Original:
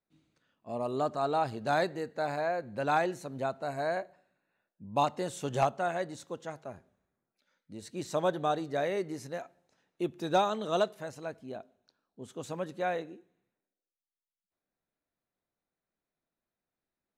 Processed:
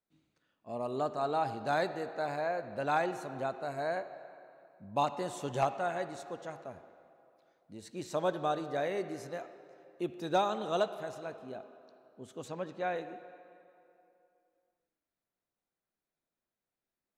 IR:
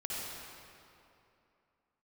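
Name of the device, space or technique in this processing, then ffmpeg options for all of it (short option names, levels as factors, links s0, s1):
filtered reverb send: -filter_complex "[0:a]asplit=2[s0][s1];[s1]highpass=260,lowpass=4700[s2];[1:a]atrim=start_sample=2205[s3];[s2][s3]afir=irnorm=-1:irlink=0,volume=0.237[s4];[s0][s4]amix=inputs=2:normalize=0,asettb=1/sr,asplit=3[s5][s6][s7];[s5]atrim=end=12.484[s8];[s6]atrim=start=12.48:end=12.96,asetpts=PTS-STARTPTS,afade=t=in:d=0.004:c=qsin,afade=t=out:st=0.476:d=0.004:c=qsin,lowpass=6100[s9];[s7]atrim=start=12.956[s10];[s8][s9]acrossfade=d=0.004:c1=hsin:c2=qsin[s11];[s11][s10]acrossfade=d=0.004:c1=qsin:c2=hsin,volume=0.668"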